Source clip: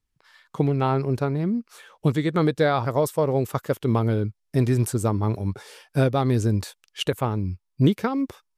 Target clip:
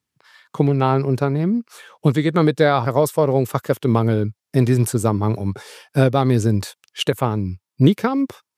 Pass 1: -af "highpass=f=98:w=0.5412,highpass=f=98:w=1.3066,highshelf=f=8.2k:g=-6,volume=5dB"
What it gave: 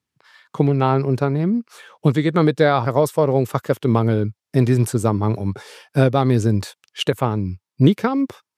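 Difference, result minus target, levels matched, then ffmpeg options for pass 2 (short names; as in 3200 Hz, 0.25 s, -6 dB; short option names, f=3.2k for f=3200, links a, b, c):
8000 Hz band -3.0 dB
-af "highpass=f=98:w=0.5412,highpass=f=98:w=1.3066,volume=5dB"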